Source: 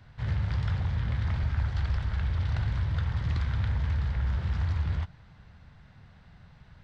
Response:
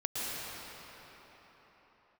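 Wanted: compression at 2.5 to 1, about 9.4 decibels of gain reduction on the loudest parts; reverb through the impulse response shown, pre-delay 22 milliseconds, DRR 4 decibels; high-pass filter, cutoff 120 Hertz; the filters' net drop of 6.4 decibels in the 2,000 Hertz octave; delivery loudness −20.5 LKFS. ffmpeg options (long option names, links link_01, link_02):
-filter_complex "[0:a]highpass=120,equalizer=frequency=2000:width_type=o:gain=-8.5,acompressor=threshold=-45dB:ratio=2.5,asplit=2[link_01][link_02];[1:a]atrim=start_sample=2205,adelay=22[link_03];[link_02][link_03]afir=irnorm=-1:irlink=0,volume=-10.5dB[link_04];[link_01][link_04]amix=inputs=2:normalize=0,volume=23.5dB"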